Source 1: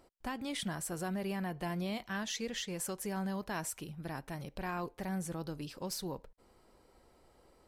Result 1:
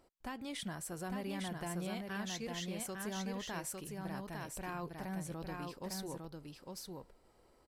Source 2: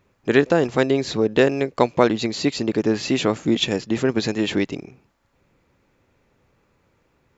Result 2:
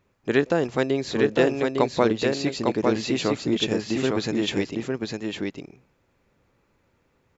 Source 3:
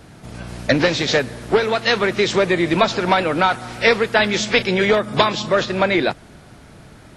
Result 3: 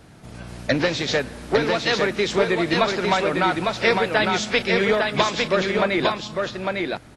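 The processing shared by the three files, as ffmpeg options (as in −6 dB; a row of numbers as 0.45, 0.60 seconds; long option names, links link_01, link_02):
-af "aecho=1:1:854:0.668,volume=-4.5dB"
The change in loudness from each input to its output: −3.5, −3.5, −3.5 LU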